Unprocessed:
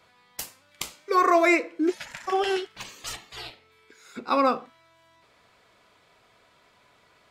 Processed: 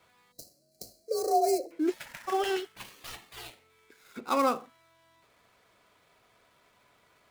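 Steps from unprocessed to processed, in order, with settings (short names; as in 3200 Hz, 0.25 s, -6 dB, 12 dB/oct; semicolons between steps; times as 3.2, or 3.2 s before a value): switching dead time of 0.071 ms; 0.32–1.71 spectral gain 720–3900 Hz -27 dB; 0.42–1.66 frequency shift +45 Hz; gain -4 dB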